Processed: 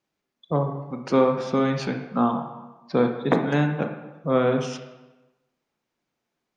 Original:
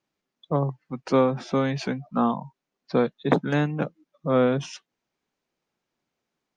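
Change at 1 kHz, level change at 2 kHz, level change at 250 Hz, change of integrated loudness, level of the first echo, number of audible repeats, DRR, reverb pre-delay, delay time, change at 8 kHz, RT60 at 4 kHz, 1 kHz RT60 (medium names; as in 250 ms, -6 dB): +1.5 dB, +1.0 dB, +1.5 dB, +1.0 dB, no echo, no echo, 5.0 dB, 24 ms, no echo, no reading, 0.85 s, 1.1 s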